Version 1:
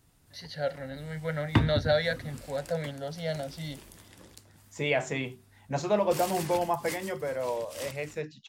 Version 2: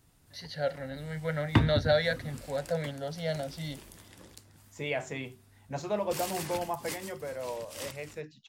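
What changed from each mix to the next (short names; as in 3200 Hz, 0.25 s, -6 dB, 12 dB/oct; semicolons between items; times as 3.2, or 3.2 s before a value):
second voice -5.5 dB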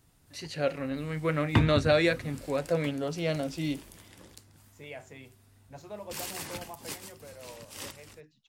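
first voice: remove fixed phaser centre 1700 Hz, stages 8; second voice -11.0 dB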